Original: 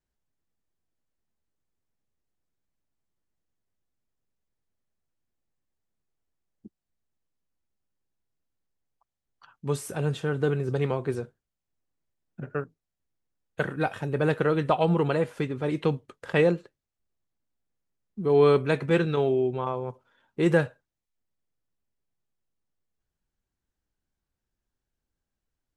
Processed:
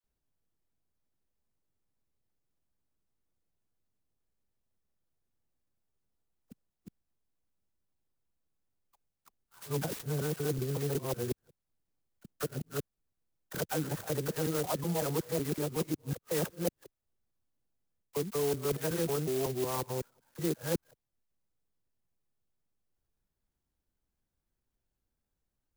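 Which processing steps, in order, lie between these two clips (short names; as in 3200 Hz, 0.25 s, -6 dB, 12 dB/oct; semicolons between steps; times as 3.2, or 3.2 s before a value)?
local time reversal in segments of 0.185 s; reverse; compressor 6:1, threshold -29 dBFS, peak gain reduction 13 dB; reverse; dispersion lows, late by 41 ms, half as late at 880 Hz; clock jitter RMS 0.11 ms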